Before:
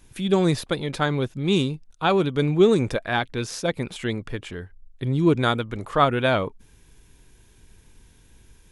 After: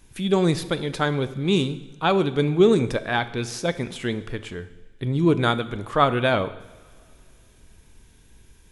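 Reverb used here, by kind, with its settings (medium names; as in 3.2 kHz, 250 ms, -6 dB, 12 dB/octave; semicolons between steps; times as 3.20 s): two-slope reverb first 0.92 s, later 3 s, from -18 dB, DRR 12 dB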